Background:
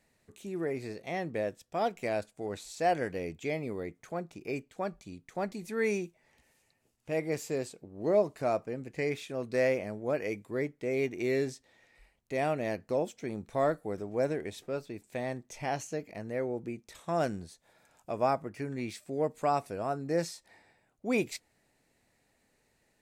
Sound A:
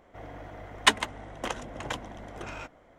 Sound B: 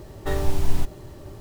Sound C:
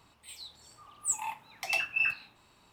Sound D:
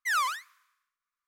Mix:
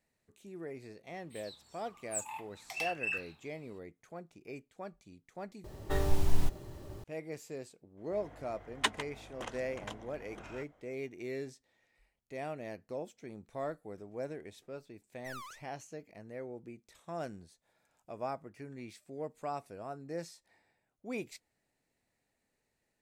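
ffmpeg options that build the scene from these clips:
-filter_complex "[0:a]volume=0.316[s0];[3:a]asoftclip=type=tanh:threshold=0.112[s1];[4:a]aeval=exprs='clip(val(0),-1,0.0224)':c=same[s2];[s0]asplit=2[s3][s4];[s3]atrim=end=5.644[s5];[2:a]atrim=end=1.4,asetpts=PTS-STARTPTS,volume=0.501[s6];[s4]atrim=start=7.036[s7];[s1]atrim=end=2.72,asetpts=PTS-STARTPTS,volume=0.473,afade=t=in:d=0.004:c=hsin,afade=t=out:st=2.716:d=0.004:c=hsin,adelay=1070[s8];[1:a]atrim=end=2.98,asetpts=PTS-STARTPTS,volume=0.316,afade=t=in:d=0.004:c=hsin,afade=t=out:st=2.976:d=0.004:c=hsin,adelay=7970[s9];[s2]atrim=end=1.27,asetpts=PTS-STARTPTS,volume=0.15,afade=t=in:d=0.004:c=hsin,afade=t=out:st=1.266:d=0.004:c=hsin,adelay=15190[s10];[s5][s6]acrossfade=d=0.004:c1=hsin:c2=hsin[s11];[s11][s7]acrossfade=d=0.004:c1=hsin:c2=hsin[s12];[s12][s8][s9][s10]amix=inputs=4:normalize=0"

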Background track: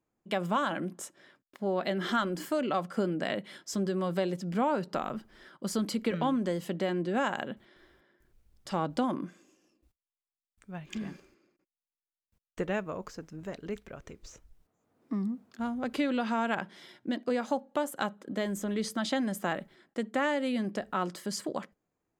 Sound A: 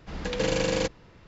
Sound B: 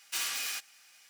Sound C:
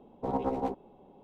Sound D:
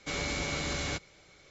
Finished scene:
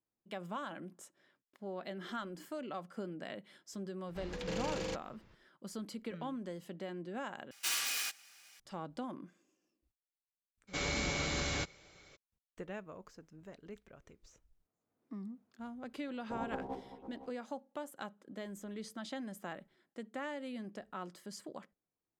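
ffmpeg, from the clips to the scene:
-filter_complex "[0:a]volume=0.237[s0];[1:a]asoftclip=type=tanh:threshold=0.0891[s1];[3:a]aecho=1:1:508:0.251[s2];[s0]asplit=2[s3][s4];[s3]atrim=end=7.514[s5];[2:a]atrim=end=1.09,asetpts=PTS-STARTPTS,volume=0.891[s6];[s4]atrim=start=8.596[s7];[s1]atrim=end=1.27,asetpts=PTS-STARTPTS,volume=0.299,afade=t=in:d=0.004:c=hsin,afade=t=out:st=1.266:d=0.004:c=hsin,adelay=4080[s8];[4:a]atrim=end=1.5,asetpts=PTS-STARTPTS,volume=0.794,afade=t=in:d=0.02,afade=t=out:st=1.48:d=0.02,adelay=10670[s9];[s2]atrim=end=1.23,asetpts=PTS-STARTPTS,volume=0.299,afade=t=in:d=0.004:c=hsin,afade=t=out:st=1.226:d=0.004:c=hsin,adelay=16070[s10];[s5][s6]acrossfade=d=0.004:c1=hsin:c2=hsin[s11];[s11][s7]acrossfade=d=0.004:c1=hsin:c2=hsin[s12];[s12][s8][s9][s10]amix=inputs=4:normalize=0"

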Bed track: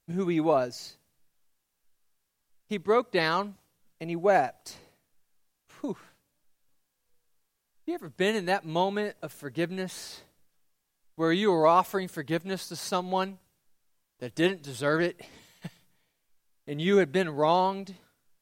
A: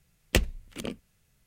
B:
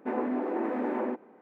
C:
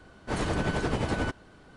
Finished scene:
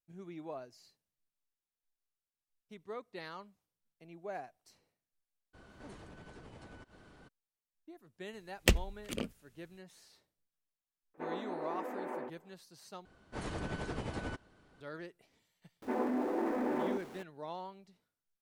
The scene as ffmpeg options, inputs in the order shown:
-filter_complex "[3:a]asplit=2[s0][s1];[2:a]asplit=2[s2][s3];[0:a]volume=0.1[s4];[s0]acompressor=threshold=0.00501:ratio=6:attack=3.2:release=140:knee=1:detection=peak[s5];[s2]highpass=380[s6];[s3]aeval=exprs='val(0)+0.5*0.00631*sgn(val(0))':c=same[s7];[s4]asplit=2[s8][s9];[s8]atrim=end=13.054[s10];[s1]atrim=end=1.76,asetpts=PTS-STARTPTS,volume=0.282[s11];[s9]atrim=start=14.806[s12];[s5]atrim=end=1.76,asetpts=PTS-STARTPTS,volume=0.562,afade=t=in:d=0.02,afade=t=out:st=1.74:d=0.02,adelay=243873S[s13];[1:a]atrim=end=1.46,asetpts=PTS-STARTPTS,volume=0.75,afade=t=in:d=0.004:c=hsin,afade=t=out:st=1.456:d=0.004:c=hsin,adelay=8330[s14];[s6]atrim=end=1.41,asetpts=PTS-STARTPTS,volume=0.422,afade=t=in:d=0.004:c=hsin,afade=t=out:st=1.406:d=0.004:c=hsin,adelay=491274S[s15];[s7]atrim=end=1.41,asetpts=PTS-STARTPTS,volume=0.631,afade=t=in:d=0.004:c=hsin,afade=t=out:st=1.406:d=0.004:c=hsin,adelay=15820[s16];[s10][s11]acrossfade=d=0.004:c1=hsin:c2=hsin[s17];[s17][s12]acrossfade=d=0.004:c1=hsin:c2=hsin[s18];[s18][s13][s14][s15][s16]amix=inputs=5:normalize=0"

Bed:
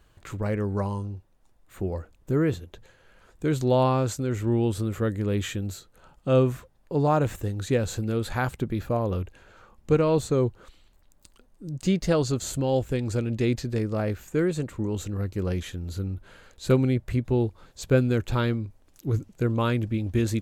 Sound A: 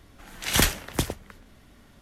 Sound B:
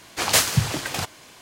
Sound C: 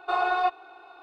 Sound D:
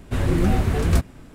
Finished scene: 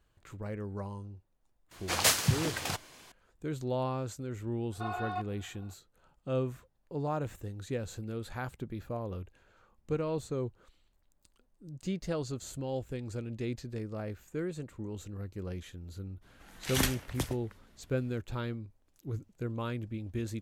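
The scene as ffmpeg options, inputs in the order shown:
-filter_complex "[0:a]volume=0.266[s0];[2:a]atrim=end=1.41,asetpts=PTS-STARTPTS,volume=0.447,afade=t=in:d=0.004:c=hsin,afade=t=out:st=1.406:d=0.004:c=hsin,adelay=1710[s1];[3:a]atrim=end=1.02,asetpts=PTS-STARTPTS,volume=0.237,afade=t=in:d=0.004:c=hsin,afade=t=out:st=1.016:d=0.004:c=hsin,adelay=4720[s2];[1:a]atrim=end=2.01,asetpts=PTS-STARTPTS,volume=0.355,afade=t=in:d=0.02,afade=t=out:st=1.99:d=0.02,adelay=16210[s3];[s0][s1][s2][s3]amix=inputs=4:normalize=0"

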